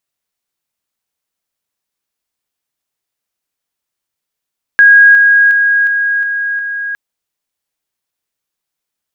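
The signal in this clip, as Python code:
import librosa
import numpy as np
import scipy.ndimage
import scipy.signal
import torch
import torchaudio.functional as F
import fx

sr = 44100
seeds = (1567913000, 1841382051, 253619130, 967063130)

y = fx.level_ladder(sr, hz=1640.0, from_db=-1.5, step_db=-3.0, steps=6, dwell_s=0.36, gap_s=0.0)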